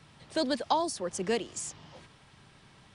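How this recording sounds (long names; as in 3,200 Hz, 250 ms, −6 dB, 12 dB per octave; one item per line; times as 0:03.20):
background noise floor −59 dBFS
spectral slope −3.0 dB per octave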